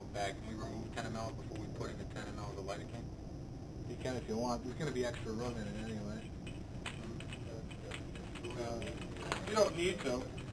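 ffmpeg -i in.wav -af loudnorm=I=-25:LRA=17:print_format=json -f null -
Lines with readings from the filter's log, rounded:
"input_i" : "-40.6",
"input_tp" : "-15.3",
"input_lra" : "5.8",
"input_thresh" : "-50.6",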